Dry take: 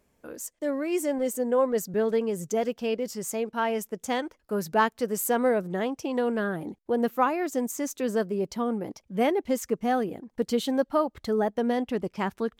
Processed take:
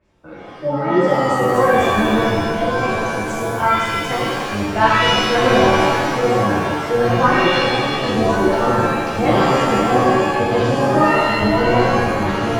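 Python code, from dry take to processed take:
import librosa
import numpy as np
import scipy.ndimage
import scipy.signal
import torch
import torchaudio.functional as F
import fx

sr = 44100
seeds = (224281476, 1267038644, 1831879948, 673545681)

p1 = fx.octave_divider(x, sr, octaves=1, level_db=0.0)
p2 = fx.notch(p1, sr, hz=430.0, q=12.0)
p3 = fx.echo_wet_highpass(p2, sr, ms=550, feedback_pct=72, hz=1700.0, wet_db=-5.0)
p4 = fx.filter_lfo_lowpass(p3, sr, shape='sine', hz=4.0, low_hz=450.0, high_hz=5500.0, q=1.4)
p5 = fx.level_steps(p4, sr, step_db=24)
p6 = p4 + (p5 * librosa.db_to_amplitude(0.0))
p7 = fx.rev_shimmer(p6, sr, seeds[0], rt60_s=1.4, semitones=7, shimmer_db=-2, drr_db=-7.5)
y = p7 * librosa.db_to_amplitude(-4.5)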